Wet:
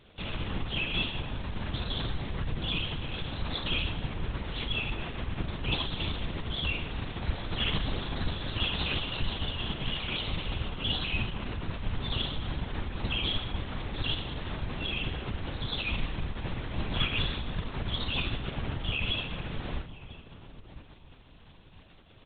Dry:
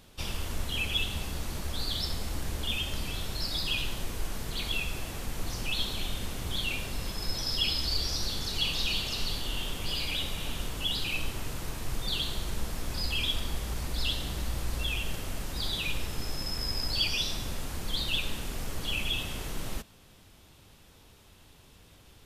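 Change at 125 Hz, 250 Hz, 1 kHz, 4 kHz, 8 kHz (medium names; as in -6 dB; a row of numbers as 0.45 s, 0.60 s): +3.5 dB, +4.0 dB, +2.5 dB, -2.0 dB, under -40 dB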